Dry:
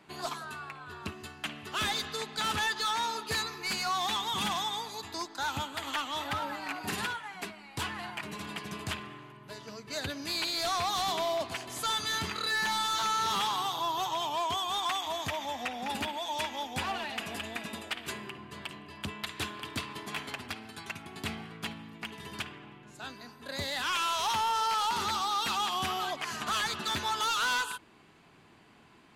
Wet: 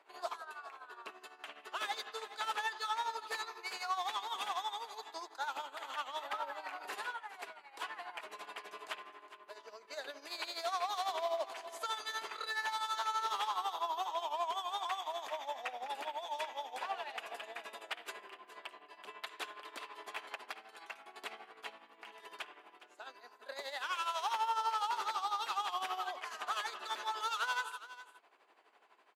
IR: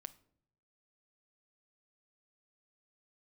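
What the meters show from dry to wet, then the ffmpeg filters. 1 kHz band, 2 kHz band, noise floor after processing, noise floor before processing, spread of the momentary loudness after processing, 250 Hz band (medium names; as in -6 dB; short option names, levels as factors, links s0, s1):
-5.0 dB, -7.5 dB, -64 dBFS, -56 dBFS, 15 LU, -20.5 dB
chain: -filter_complex "[0:a]highpass=f=470:w=0.5412,highpass=f=470:w=1.3066,highshelf=f=2100:g=-10,tremolo=f=12:d=0.69,asplit=2[s0][s1];[s1]aecho=0:1:413:0.168[s2];[s0][s2]amix=inputs=2:normalize=0"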